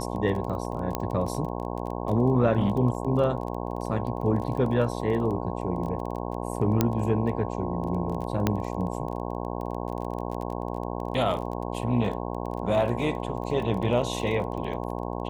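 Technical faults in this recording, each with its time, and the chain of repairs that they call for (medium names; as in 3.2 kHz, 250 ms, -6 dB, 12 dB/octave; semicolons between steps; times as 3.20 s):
buzz 60 Hz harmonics 18 -32 dBFS
crackle 20 per s -33 dBFS
0.95 s: pop -12 dBFS
6.81 s: pop -7 dBFS
8.47 s: pop -9 dBFS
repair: de-click; de-hum 60 Hz, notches 18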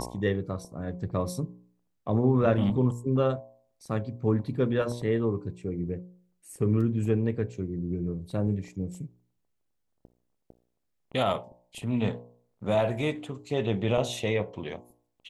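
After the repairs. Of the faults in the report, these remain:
6.81 s: pop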